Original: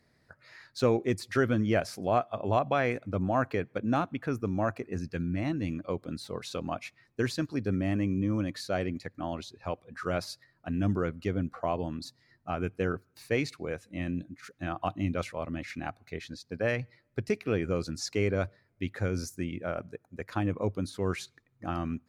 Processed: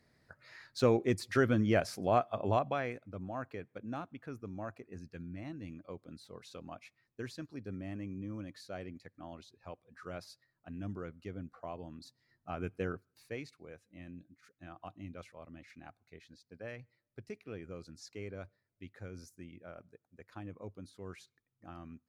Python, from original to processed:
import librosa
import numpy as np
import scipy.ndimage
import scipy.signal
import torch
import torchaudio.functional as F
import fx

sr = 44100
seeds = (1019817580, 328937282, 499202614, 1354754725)

y = fx.gain(x, sr, db=fx.line((2.47, -2.0), (3.05, -13.0), (11.85, -13.0), (12.76, -5.5), (13.53, -16.0)))